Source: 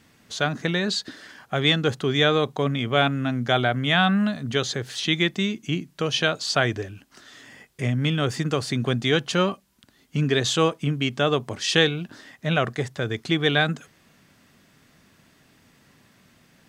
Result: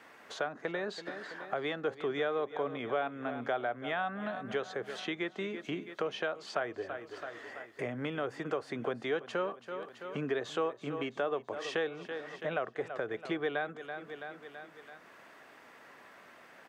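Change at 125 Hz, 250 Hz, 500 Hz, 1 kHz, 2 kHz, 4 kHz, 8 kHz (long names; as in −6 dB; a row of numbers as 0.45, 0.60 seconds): −22.5, −14.5, −8.5, −9.5, −12.5, −20.5, −22.0 decibels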